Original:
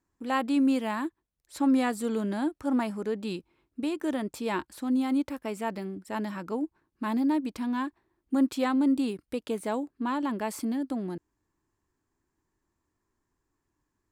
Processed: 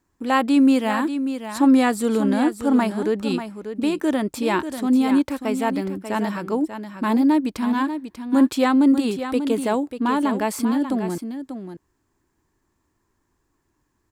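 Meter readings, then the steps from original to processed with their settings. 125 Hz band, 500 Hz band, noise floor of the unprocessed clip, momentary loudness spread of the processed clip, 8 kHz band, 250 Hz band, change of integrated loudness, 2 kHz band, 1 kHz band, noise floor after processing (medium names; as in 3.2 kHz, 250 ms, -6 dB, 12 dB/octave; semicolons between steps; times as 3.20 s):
no reading, +9.0 dB, -82 dBFS, 10 LU, +9.0 dB, +9.0 dB, +8.5 dB, +9.0 dB, +9.0 dB, -72 dBFS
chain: on a send: delay 590 ms -9.5 dB; on the sum: trim +8.5 dB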